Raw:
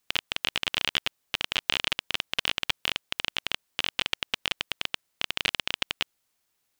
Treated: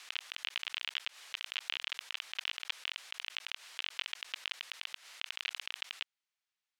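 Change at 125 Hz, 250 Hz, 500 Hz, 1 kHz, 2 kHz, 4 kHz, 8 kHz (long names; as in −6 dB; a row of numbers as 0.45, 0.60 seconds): below −40 dB, below −30 dB, −21.0 dB, −14.0 dB, −10.0 dB, −10.5 dB, −11.5 dB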